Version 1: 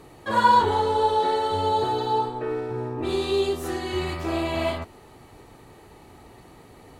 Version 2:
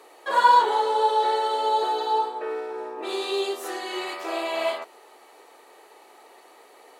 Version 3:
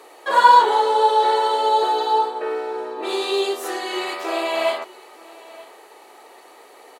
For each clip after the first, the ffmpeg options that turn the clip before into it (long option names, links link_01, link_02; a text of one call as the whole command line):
ffmpeg -i in.wav -af "highpass=frequency=430:width=0.5412,highpass=frequency=430:width=1.3066,volume=1dB" out.wav
ffmpeg -i in.wav -af "aecho=1:1:927:0.0841,volume=5dB" out.wav